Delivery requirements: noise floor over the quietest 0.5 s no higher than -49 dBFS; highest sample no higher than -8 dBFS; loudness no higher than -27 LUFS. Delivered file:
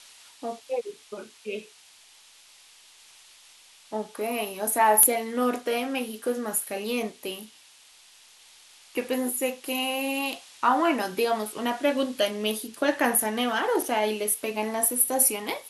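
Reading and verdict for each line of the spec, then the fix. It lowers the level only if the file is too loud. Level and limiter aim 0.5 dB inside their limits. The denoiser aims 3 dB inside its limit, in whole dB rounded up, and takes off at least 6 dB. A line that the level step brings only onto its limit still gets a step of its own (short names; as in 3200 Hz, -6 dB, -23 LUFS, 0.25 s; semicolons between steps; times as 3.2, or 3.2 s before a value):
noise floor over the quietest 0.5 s -54 dBFS: OK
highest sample -6.0 dBFS: fail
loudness -25.5 LUFS: fail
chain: gain -2 dB; limiter -8.5 dBFS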